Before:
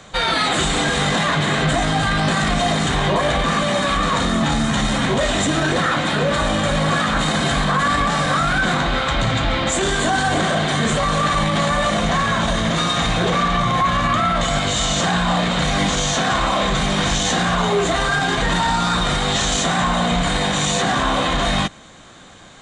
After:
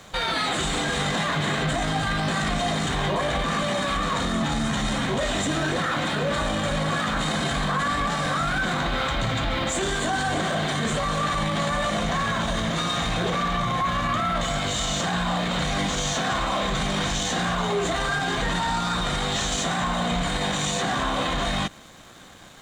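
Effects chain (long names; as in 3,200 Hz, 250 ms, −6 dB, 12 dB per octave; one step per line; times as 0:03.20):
brickwall limiter −16.5 dBFS, peak gain reduction 8 dB
dead-zone distortion −50 dBFS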